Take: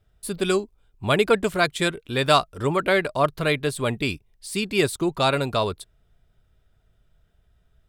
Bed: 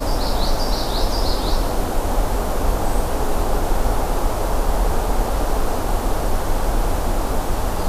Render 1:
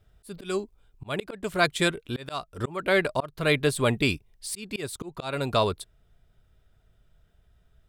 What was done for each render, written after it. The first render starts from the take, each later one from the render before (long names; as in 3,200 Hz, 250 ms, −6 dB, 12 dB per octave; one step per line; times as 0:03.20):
speech leveller within 4 dB 2 s
volume swells 347 ms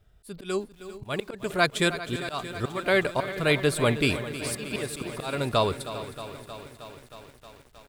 repeating echo 396 ms, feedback 27%, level −15.5 dB
feedback echo at a low word length 314 ms, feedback 80%, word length 8 bits, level −13.5 dB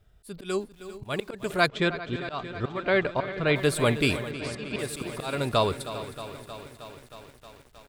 0:01.68–0:03.56: high-frequency loss of the air 180 metres
0:04.31–0:04.79: high-frequency loss of the air 97 metres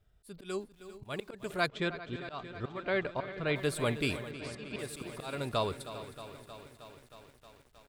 level −8 dB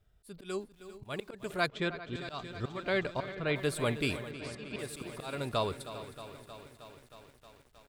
0:02.15–0:03.35: bass and treble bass +3 dB, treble +12 dB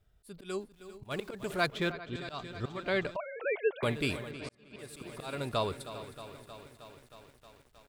0:01.11–0:01.92: mu-law and A-law mismatch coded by mu
0:03.16–0:03.83: three sine waves on the formant tracks
0:04.49–0:05.25: fade in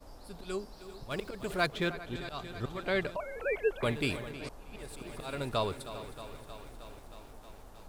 mix in bed −31 dB